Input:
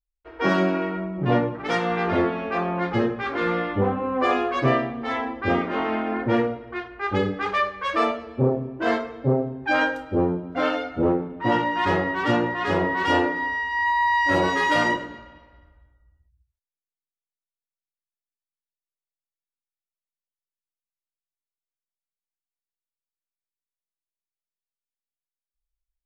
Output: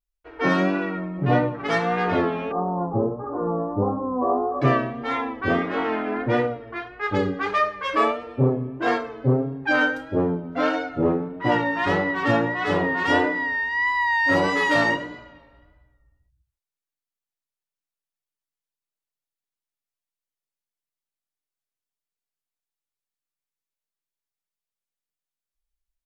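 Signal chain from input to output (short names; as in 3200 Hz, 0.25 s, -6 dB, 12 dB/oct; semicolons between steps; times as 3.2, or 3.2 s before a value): 2.51–4.62 steep low-pass 1100 Hz 48 dB/oct; comb 6.9 ms, depth 42%; vibrato 1.6 Hz 55 cents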